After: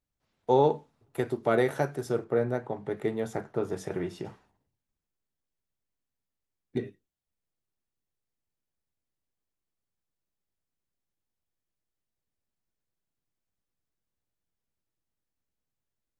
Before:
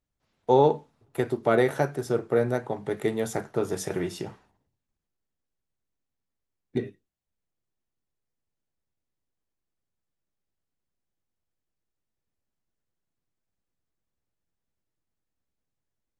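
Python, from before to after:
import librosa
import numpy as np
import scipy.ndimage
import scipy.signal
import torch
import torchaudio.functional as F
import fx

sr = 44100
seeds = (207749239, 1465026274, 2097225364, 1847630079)

y = fx.high_shelf(x, sr, hz=3800.0, db=-11.0, at=(2.24, 4.25))
y = y * librosa.db_to_amplitude(-3.0)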